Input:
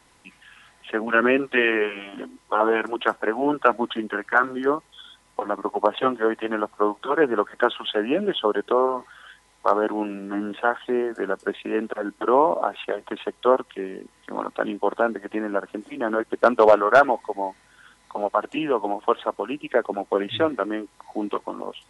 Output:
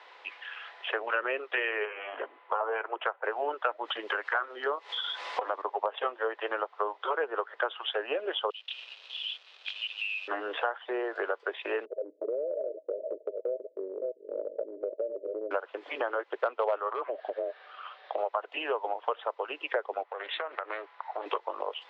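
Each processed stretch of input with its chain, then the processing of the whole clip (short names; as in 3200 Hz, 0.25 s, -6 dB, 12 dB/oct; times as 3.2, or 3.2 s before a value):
1.85–3.25 BPF 390–2900 Hz + air absorption 300 m
3.85–5.62 high shelf 4300 Hz +9 dB + upward compressor, threshold -22 dBFS
8.5–10.28 brick-wall FIR high-pass 2400 Hz + high shelf 4000 Hz -10.5 dB + sample leveller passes 5
11.85–15.51 reverse delay 0.323 s, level -12.5 dB + Chebyshev low-pass 640 Hz, order 10 + compressor 2:1, threshold -34 dBFS
16.9–18.18 compressor 3:1, threshold -25 dBFS + frequency shift -250 Hz + LPF 4500 Hz 24 dB/oct
20.03–21.26 band-pass 1300 Hz, Q 0.95 + compressor 8:1, threshold -33 dBFS + Doppler distortion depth 0.4 ms
whole clip: steep high-pass 440 Hz 36 dB/oct; compressor 4:1, threshold -38 dBFS; LPF 3700 Hz 24 dB/oct; gain +7.5 dB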